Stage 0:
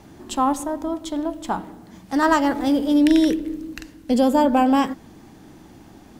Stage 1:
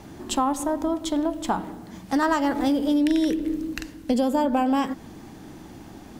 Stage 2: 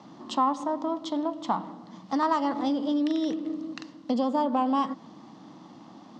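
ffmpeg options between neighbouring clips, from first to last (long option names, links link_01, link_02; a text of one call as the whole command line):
ffmpeg -i in.wav -af "acompressor=threshold=-23dB:ratio=4,volume=3dB" out.wav
ffmpeg -i in.wav -af "aeval=exprs='if(lt(val(0),0),0.708*val(0),val(0))':channel_layout=same,highpass=frequency=160:width=0.5412,highpass=frequency=160:width=1.3066,equalizer=frequency=400:width_type=q:width=4:gain=-10,equalizer=frequency=1100:width_type=q:width=4:gain=8,equalizer=frequency=1600:width_type=q:width=4:gain=-9,equalizer=frequency=2400:width_type=q:width=4:gain=-8,lowpass=frequency=5400:width=0.5412,lowpass=frequency=5400:width=1.3066,volume=-2dB" out.wav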